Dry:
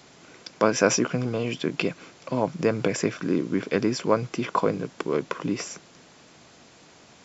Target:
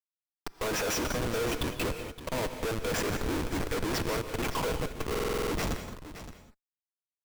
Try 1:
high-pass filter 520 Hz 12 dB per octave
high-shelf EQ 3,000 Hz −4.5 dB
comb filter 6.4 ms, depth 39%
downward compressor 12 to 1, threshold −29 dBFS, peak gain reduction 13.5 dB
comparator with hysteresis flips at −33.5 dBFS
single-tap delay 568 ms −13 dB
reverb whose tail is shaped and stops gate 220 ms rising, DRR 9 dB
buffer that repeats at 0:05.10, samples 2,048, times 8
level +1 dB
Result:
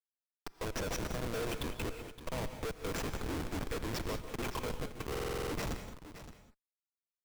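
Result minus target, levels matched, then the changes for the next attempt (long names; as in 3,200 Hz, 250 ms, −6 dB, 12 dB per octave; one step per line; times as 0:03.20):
downward compressor: peak gain reduction +13.5 dB
remove: downward compressor 12 to 1, threshold −29 dBFS, peak gain reduction 13.5 dB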